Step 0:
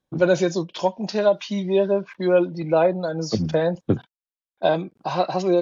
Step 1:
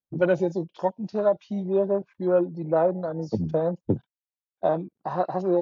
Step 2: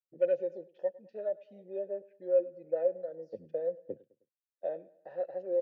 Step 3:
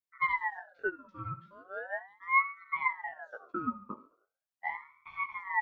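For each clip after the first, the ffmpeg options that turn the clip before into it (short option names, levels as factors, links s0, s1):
-af "afwtdn=0.0501,volume=0.668"
-filter_complex "[0:a]asplit=3[s0][s1][s2];[s0]bandpass=f=530:t=q:w=8,volume=1[s3];[s1]bandpass=f=1840:t=q:w=8,volume=0.501[s4];[s2]bandpass=f=2480:t=q:w=8,volume=0.355[s5];[s3][s4][s5]amix=inputs=3:normalize=0,aecho=1:1:104|208|312:0.0841|0.0387|0.0178,volume=0.668"
-af "flanger=delay=15:depth=6.2:speed=0.84,aecho=1:1:69|138|207|276:0.141|0.0692|0.0339|0.0166,aeval=exprs='val(0)*sin(2*PI*1200*n/s+1200*0.4/0.39*sin(2*PI*0.39*n/s))':c=same,volume=1.58"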